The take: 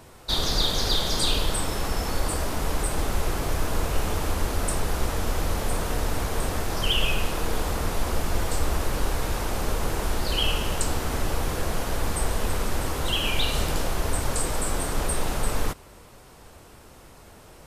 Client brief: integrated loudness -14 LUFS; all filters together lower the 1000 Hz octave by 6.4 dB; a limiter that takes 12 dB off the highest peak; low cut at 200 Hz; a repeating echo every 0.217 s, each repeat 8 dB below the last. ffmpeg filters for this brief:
-af "highpass=200,equalizer=f=1k:t=o:g=-8.5,alimiter=level_in=0.5dB:limit=-24dB:level=0:latency=1,volume=-0.5dB,aecho=1:1:217|434|651|868|1085:0.398|0.159|0.0637|0.0255|0.0102,volume=18.5dB"

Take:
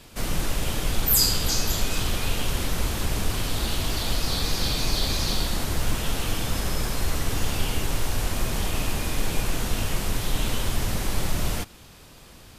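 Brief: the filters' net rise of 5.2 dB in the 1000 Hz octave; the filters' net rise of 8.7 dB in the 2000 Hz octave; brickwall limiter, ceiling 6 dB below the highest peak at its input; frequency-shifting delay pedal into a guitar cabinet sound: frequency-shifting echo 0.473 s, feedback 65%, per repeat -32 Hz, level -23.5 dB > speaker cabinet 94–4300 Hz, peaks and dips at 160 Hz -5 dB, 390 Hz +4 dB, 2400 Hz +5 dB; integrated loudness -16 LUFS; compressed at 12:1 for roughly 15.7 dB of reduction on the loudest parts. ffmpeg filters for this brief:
-filter_complex "[0:a]equalizer=f=1k:t=o:g=4.5,equalizer=f=2k:t=o:g=7,acompressor=threshold=-33dB:ratio=12,alimiter=level_in=5.5dB:limit=-24dB:level=0:latency=1,volume=-5.5dB,asplit=6[a][b][c][d][e][f];[b]adelay=473,afreqshift=-32,volume=-23.5dB[g];[c]adelay=946,afreqshift=-64,volume=-27.2dB[h];[d]adelay=1419,afreqshift=-96,volume=-31dB[i];[e]adelay=1892,afreqshift=-128,volume=-34.7dB[j];[f]adelay=2365,afreqshift=-160,volume=-38.5dB[k];[a][g][h][i][j][k]amix=inputs=6:normalize=0,highpass=94,equalizer=f=160:t=q:w=4:g=-5,equalizer=f=390:t=q:w=4:g=4,equalizer=f=2.4k:t=q:w=4:g=5,lowpass=f=4.3k:w=0.5412,lowpass=f=4.3k:w=1.3066,volume=25.5dB"

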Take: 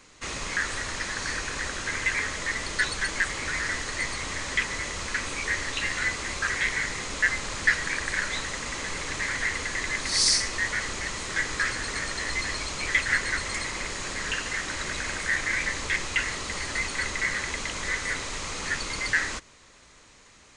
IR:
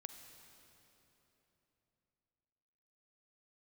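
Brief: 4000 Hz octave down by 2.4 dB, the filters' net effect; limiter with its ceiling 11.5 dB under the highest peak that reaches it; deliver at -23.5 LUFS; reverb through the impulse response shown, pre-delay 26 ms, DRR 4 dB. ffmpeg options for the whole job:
-filter_complex "[0:a]equalizer=f=4k:t=o:g=-3,alimiter=limit=-20.5dB:level=0:latency=1,asplit=2[a][b];[1:a]atrim=start_sample=2205,adelay=26[c];[b][c]afir=irnorm=-1:irlink=0,volume=0.5dB[d];[a][d]amix=inputs=2:normalize=0,volume=5.5dB"

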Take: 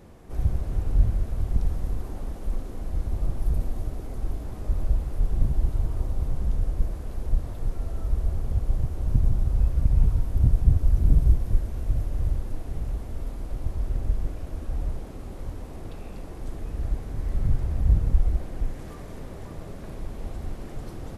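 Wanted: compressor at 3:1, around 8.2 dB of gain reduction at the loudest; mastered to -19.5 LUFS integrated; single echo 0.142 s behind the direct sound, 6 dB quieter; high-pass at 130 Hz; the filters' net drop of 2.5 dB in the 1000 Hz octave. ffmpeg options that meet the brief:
-af "highpass=130,equalizer=f=1k:t=o:g=-3.5,acompressor=threshold=-34dB:ratio=3,aecho=1:1:142:0.501,volume=21dB"

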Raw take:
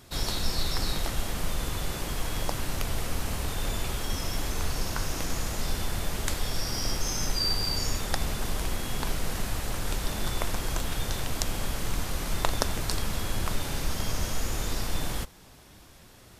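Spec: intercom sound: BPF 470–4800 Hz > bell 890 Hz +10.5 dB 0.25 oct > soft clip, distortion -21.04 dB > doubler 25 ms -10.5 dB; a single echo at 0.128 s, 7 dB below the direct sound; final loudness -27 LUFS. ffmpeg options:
-filter_complex "[0:a]highpass=470,lowpass=4.8k,equalizer=f=890:t=o:w=0.25:g=10.5,aecho=1:1:128:0.447,asoftclip=threshold=-12dB,asplit=2[a][b];[b]adelay=25,volume=-10.5dB[c];[a][c]amix=inputs=2:normalize=0,volume=7dB"

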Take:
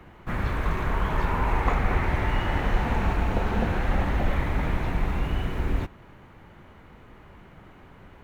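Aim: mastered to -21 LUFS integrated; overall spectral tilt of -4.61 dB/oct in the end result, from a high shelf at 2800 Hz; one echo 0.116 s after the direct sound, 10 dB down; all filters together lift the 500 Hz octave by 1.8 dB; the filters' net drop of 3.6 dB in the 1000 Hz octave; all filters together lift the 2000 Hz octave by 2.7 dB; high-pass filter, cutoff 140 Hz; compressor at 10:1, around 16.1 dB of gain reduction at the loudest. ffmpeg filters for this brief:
-af "highpass=140,equalizer=f=500:t=o:g=4,equalizer=f=1k:t=o:g=-7,equalizer=f=2k:t=o:g=6.5,highshelf=f=2.8k:g=-3.5,acompressor=threshold=-39dB:ratio=10,aecho=1:1:116:0.316,volume=22dB"

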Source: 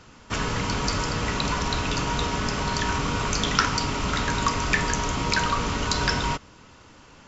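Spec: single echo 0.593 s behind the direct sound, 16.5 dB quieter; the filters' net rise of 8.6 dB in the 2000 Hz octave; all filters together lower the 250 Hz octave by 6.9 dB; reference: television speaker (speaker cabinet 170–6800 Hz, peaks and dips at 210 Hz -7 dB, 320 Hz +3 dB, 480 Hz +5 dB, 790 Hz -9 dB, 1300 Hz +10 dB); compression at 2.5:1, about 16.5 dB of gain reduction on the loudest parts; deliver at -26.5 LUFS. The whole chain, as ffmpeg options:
-af "equalizer=f=250:t=o:g=-7,equalizer=f=2k:t=o:g=8.5,acompressor=threshold=-38dB:ratio=2.5,highpass=f=170:w=0.5412,highpass=f=170:w=1.3066,equalizer=f=210:t=q:w=4:g=-7,equalizer=f=320:t=q:w=4:g=3,equalizer=f=480:t=q:w=4:g=5,equalizer=f=790:t=q:w=4:g=-9,equalizer=f=1.3k:t=q:w=4:g=10,lowpass=f=6.8k:w=0.5412,lowpass=f=6.8k:w=1.3066,aecho=1:1:593:0.15,volume=5.5dB"

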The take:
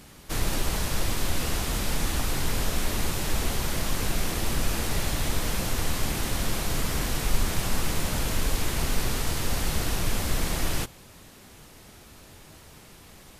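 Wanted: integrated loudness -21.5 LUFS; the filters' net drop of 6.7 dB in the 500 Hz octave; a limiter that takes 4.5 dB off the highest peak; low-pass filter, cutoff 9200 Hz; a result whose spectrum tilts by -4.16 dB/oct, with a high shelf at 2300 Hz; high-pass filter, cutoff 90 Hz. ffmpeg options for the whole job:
-af "highpass=90,lowpass=9.2k,equalizer=f=500:t=o:g=-8.5,highshelf=f=2.3k:g=-7.5,volume=14dB,alimiter=limit=-11.5dB:level=0:latency=1"

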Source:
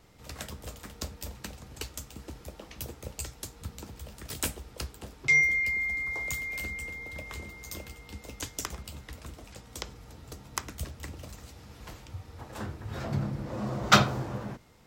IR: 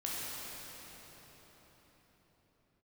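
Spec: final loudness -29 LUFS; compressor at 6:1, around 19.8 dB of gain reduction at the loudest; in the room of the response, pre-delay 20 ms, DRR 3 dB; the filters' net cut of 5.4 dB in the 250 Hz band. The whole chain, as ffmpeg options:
-filter_complex "[0:a]equalizer=f=250:t=o:g=-8,acompressor=threshold=-36dB:ratio=6,asplit=2[a][b];[1:a]atrim=start_sample=2205,adelay=20[c];[b][c]afir=irnorm=-1:irlink=0,volume=-7dB[d];[a][d]amix=inputs=2:normalize=0,volume=10.5dB"

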